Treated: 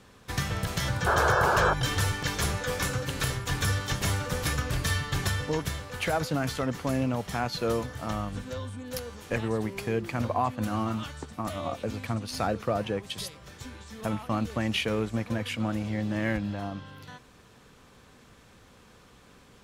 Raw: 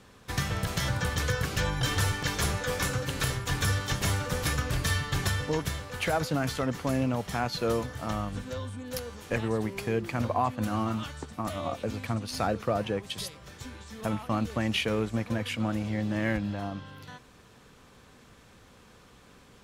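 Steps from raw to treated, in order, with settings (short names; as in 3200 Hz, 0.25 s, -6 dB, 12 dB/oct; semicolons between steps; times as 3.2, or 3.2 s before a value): painted sound noise, 1.06–1.74, 340–1700 Hz -24 dBFS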